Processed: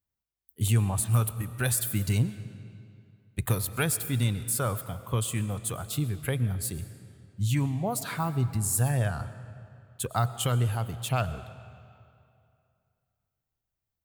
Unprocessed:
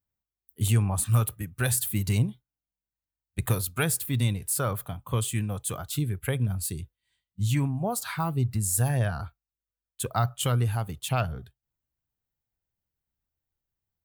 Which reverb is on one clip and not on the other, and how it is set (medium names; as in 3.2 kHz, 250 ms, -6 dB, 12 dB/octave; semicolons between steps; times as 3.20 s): algorithmic reverb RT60 2.5 s, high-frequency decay 0.8×, pre-delay 70 ms, DRR 13.5 dB; trim -1 dB